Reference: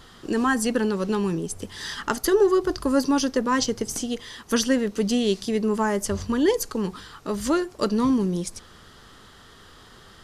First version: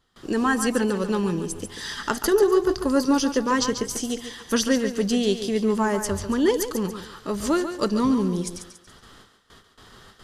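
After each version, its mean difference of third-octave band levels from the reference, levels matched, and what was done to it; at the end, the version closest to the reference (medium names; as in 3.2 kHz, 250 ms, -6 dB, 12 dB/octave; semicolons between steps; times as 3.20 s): 3.0 dB: gate with hold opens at -38 dBFS; thinning echo 141 ms, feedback 39%, high-pass 240 Hz, level -8.5 dB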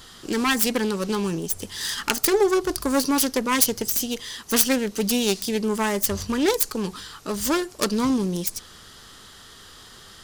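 4.5 dB: self-modulated delay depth 0.25 ms; treble shelf 3 kHz +12 dB; trim -1 dB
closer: first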